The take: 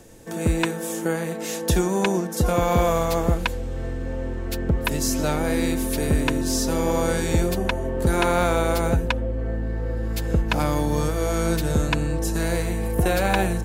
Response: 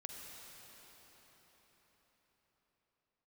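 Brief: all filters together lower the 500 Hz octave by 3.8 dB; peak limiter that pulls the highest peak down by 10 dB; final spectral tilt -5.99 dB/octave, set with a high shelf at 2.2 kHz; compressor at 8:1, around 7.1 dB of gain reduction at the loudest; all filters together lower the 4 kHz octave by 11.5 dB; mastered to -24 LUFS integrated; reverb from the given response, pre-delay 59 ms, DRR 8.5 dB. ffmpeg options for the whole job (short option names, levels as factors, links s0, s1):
-filter_complex "[0:a]equalizer=f=500:t=o:g=-4,highshelf=f=2200:g=-8,equalizer=f=4000:t=o:g=-7.5,acompressor=threshold=0.0708:ratio=8,alimiter=limit=0.0668:level=0:latency=1,asplit=2[s0][s1];[1:a]atrim=start_sample=2205,adelay=59[s2];[s1][s2]afir=irnorm=-1:irlink=0,volume=0.531[s3];[s0][s3]amix=inputs=2:normalize=0,volume=2.66"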